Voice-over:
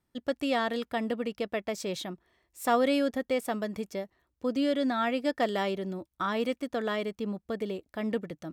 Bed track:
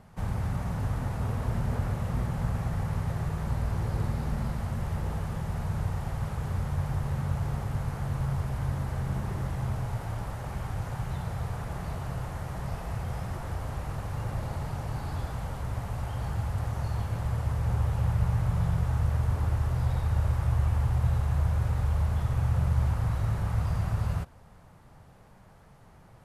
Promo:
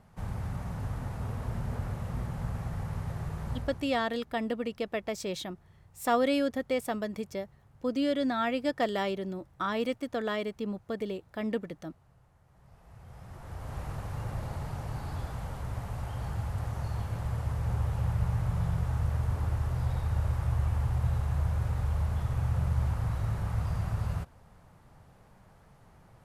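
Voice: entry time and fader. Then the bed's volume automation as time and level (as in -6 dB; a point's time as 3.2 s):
3.40 s, -1.0 dB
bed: 3.55 s -5 dB
4.1 s -28.5 dB
12.43 s -28.5 dB
13.79 s -3 dB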